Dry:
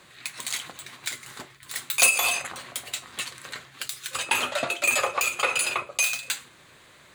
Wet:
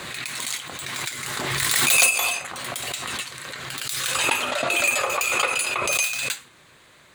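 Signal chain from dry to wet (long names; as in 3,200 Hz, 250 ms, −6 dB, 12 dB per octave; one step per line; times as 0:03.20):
echo ahead of the sound 113 ms −14 dB
background raised ahead of every attack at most 21 dB per second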